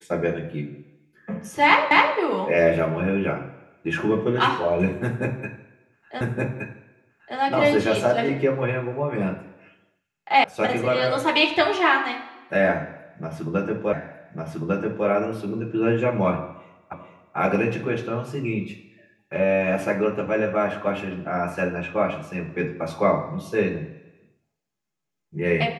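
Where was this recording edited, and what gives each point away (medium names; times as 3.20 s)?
1.91 s: repeat of the last 0.26 s
6.21 s: repeat of the last 1.17 s
10.44 s: sound stops dead
13.93 s: repeat of the last 1.15 s
16.93 s: repeat of the last 0.44 s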